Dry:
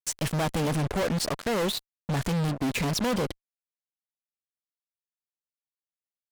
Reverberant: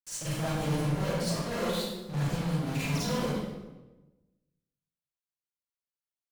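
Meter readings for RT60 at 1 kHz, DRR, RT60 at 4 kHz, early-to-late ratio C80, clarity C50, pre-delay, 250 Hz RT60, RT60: 1.0 s, -10.0 dB, 0.85 s, 0.0 dB, -4.5 dB, 35 ms, 1.3 s, 1.1 s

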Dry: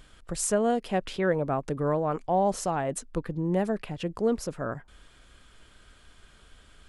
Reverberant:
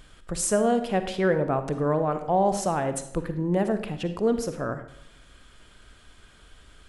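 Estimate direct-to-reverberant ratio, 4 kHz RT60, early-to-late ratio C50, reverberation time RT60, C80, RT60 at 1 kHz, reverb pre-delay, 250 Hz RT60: 9.0 dB, 0.55 s, 10.0 dB, 0.70 s, 13.0 dB, 0.70 s, 39 ms, 0.85 s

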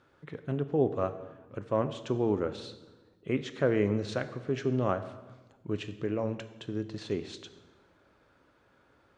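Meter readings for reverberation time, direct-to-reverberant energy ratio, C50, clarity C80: 1.2 s, 10.0 dB, 12.5 dB, 14.0 dB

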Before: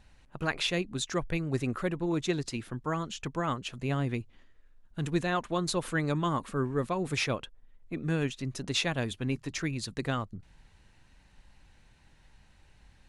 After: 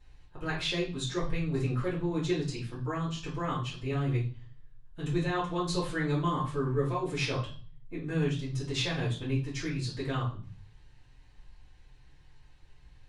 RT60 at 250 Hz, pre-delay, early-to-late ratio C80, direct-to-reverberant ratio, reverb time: 0.70 s, 3 ms, 12.5 dB, -9.0 dB, 0.40 s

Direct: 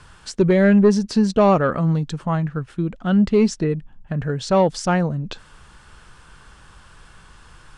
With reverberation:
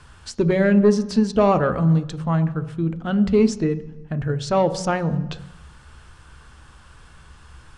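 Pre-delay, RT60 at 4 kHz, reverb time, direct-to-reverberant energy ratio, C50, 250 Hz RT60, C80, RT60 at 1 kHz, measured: 3 ms, 1.0 s, 1.0 s, 11.0 dB, 15.0 dB, 0.95 s, 17.0 dB, 1.1 s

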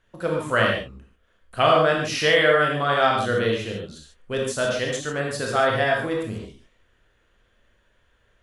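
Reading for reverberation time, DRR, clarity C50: not exponential, -1.5 dB, 1.5 dB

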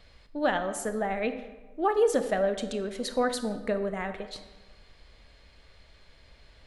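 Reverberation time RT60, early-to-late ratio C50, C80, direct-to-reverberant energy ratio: 1.2 s, 10.5 dB, 12.0 dB, 9.0 dB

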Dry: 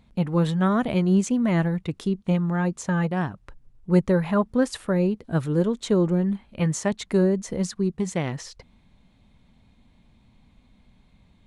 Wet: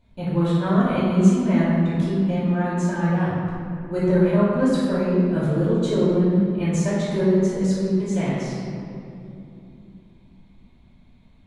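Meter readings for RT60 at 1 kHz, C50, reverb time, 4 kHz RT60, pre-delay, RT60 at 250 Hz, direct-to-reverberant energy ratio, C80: 2.7 s, -2.0 dB, 2.9 s, 1.5 s, 3 ms, 4.3 s, -12.5 dB, 0.0 dB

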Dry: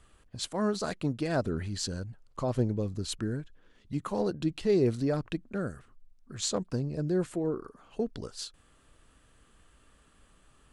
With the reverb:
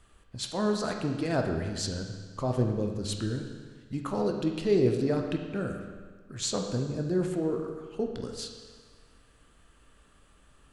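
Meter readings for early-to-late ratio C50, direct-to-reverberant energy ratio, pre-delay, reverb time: 5.0 dB, 3.0 dB, 14 ms, 1.5 s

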